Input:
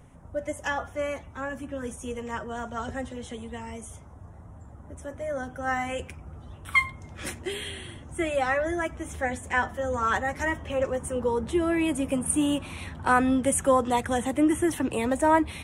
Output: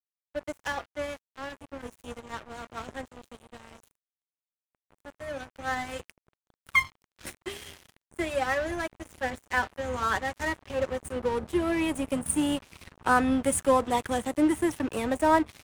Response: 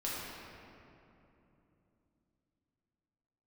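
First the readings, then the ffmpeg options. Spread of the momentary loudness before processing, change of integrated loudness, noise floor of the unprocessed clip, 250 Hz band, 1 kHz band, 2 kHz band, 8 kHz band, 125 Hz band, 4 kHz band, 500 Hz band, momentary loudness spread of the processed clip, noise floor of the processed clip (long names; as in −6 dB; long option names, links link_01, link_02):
15 LU, −1.0 dB, −47 dBFS, −2.5 dB, −2.0 dB, −2.0 dB, −3.0 dB, −4.5 dB, −1.0 dB, −2.5 dB, 18 LU, below −85 dBFS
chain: -af "aeval=exprs='sgn(val(0))*max(abs(val(0))-0.0178,0)':channel_layout=same"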